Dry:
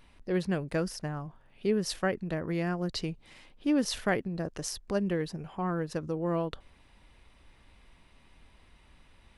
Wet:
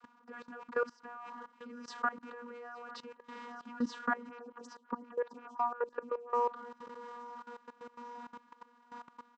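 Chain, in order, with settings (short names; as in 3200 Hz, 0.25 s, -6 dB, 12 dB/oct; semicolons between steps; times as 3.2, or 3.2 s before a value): rattling part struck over -41 dBFS, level -38 dBFS; compressor 2.5:1, threshold -43 dBFS, peak gain reduction 13.5 dB; requantised 10-bit, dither none; vocoder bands 32, saw 240 Hz; band shelf 1200 Hz +15 dB 1.1 oct; feedback echo 0.851 s, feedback 55%, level -15.5 dB; level quantiser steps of 18 dB; 4.29–6.3 photocell phaser 5.6 Hz; gain +7 dB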